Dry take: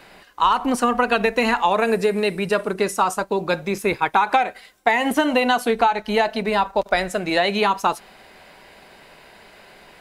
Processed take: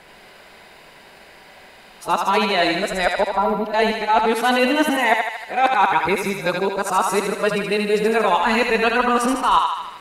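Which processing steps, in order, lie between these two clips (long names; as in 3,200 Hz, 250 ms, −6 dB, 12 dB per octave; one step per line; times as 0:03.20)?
played backwards from end to start
gain on a spectral selection 0:03.31–0:03.66, 1,400–11,000 Hz −20 dB
feedback echo with a high-pass in the loop 77 ms, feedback 65%, high-pass 550 Hz, level −3.5 dB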